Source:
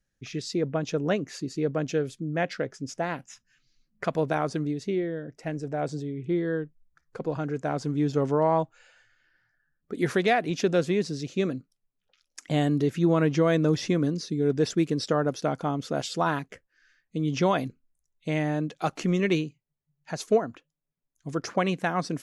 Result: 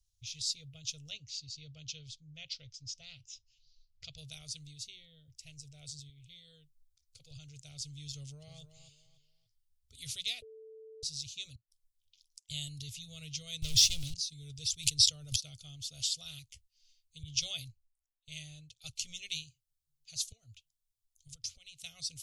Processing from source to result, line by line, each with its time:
0:01.11–0:04.18: low-pass filter 5,700 Hz 24 dB per octave
0:06.09–0:07.31: low-shelf EQ 210 Hz −8 dB
0:08.18–0:08.59: delay throw 290 ms, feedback 30%, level −9.5 dB
0:10.42–0:11.03: beep over 441 Hz −10 dBFS
0:11.55–0:12.49: gate with flip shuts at −34 dBFS, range −25 dB
0:13.62–0:14.14: leveller curve on the samples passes 3
0:14.71–0:15.36: level that may fall only so fast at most 24 dB per second
0:17.23–0:19.02: multiband upward and downward expander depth 100%
0:20.32–0:21.79: downward compressor 16 to 1, threshold −33 dBFS
whole clip: inverse Chebyshev band-stop filter 180–1,800 Hz, stop band 40 dB; parametric band 8,900 Hz +2 dB 0.33 octaves; level +3.5 dB

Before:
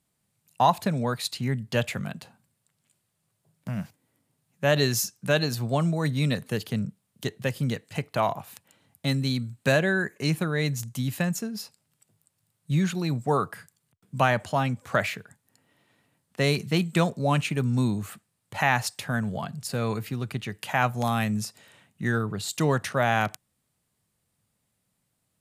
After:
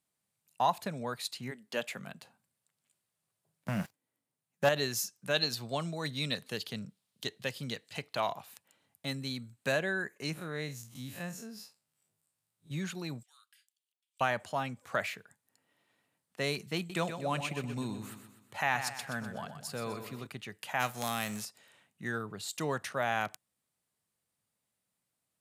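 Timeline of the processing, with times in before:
0:01.50–0:02.05: high-pass filter 300 Hz → 120 Hz 24 dB per octave
0:03.68–0:04.69: leveller curve on the samples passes 3
0:05.34–0:08.47: parametric band 4,000 Hz +8.5 dB 1.1 octaves
0:10.33–0:12.71: spectrum smeared in time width 85 ms
0:13.23–0:14.21: four-pole ladder high-pass 2,700 Hz, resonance 60%
0:16.77–0:20.27: repeating echo 125 ms, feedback 46%, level −9 dB
0:20.79–0:21.44: spectral envelope flattened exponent 0.6
whole clip: low-shelf EQ 200 Hz −11.5 dB; level −7 dB

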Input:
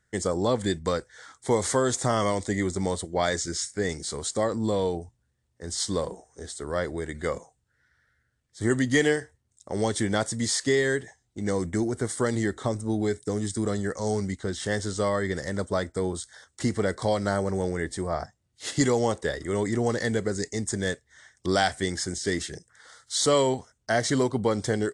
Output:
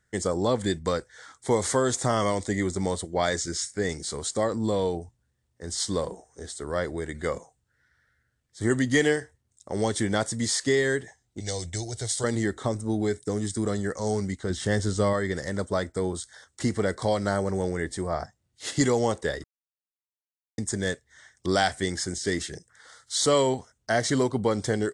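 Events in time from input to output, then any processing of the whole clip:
0:11.40–0:12.24: drawn EQ curve 120 Hz 0 dB, 230 Hz −17 dB, 730 Hz −1 dB, 1,100 Hz −13 dB, 1,800 Hz −5 dB, 3,800 Hz +12 dB, 6,200 Hz +9 dB, 13,000 Hz −2 dB
0:14.50–0:15.13: low-shelf EQ 270 Hz +7 dB
0:19.44–0:20.58: silence

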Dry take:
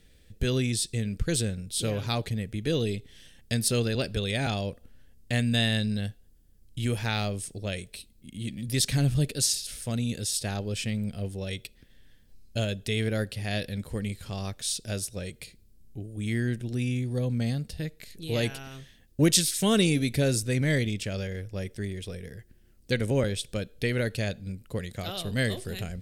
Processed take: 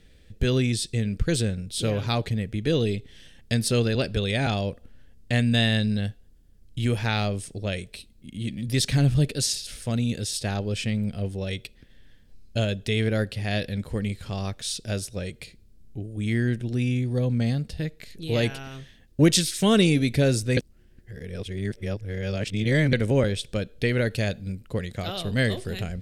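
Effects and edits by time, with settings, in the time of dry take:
0:20.57–0:22.93: reverse
0:24.11–0:24.61: high-shelf EQ 8,800 Hz +7.5 dB
whole clip: high-shelf EQ 7,500 Hz −11 dB; level +4 dB

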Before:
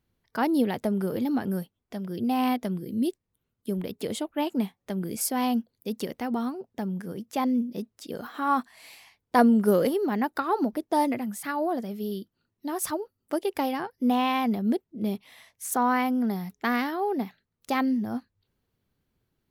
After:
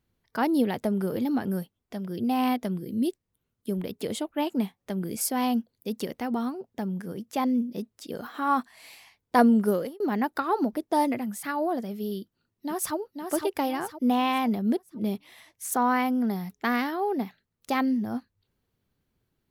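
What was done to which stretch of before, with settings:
0:09.58–0:10.00: fade out
0:12.19–0:12.96: delay throw 510 ms, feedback 40%, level −5 dB

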